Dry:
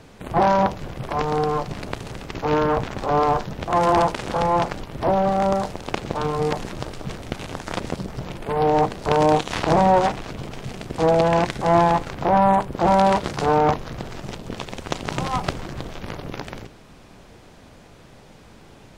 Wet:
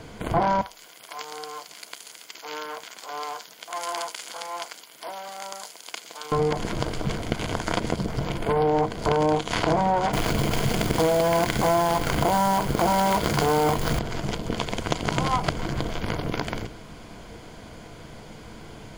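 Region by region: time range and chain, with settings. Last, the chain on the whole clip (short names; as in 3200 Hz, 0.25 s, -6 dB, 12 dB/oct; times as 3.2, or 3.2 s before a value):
0.61–6.32 HPF 220 Hz + differentiator
10.13–13.99 companded quantiser 4-bit + fast leveller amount 50%
whole clip: ripple EQ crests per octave 1.8, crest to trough 6 dB; compressor 4:1, threshold -24 dBFS; gain +4 dB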